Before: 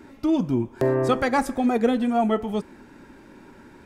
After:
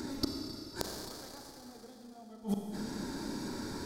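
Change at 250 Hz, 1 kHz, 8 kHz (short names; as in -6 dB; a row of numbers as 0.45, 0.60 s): -15.5, -21.0, -1.5 dB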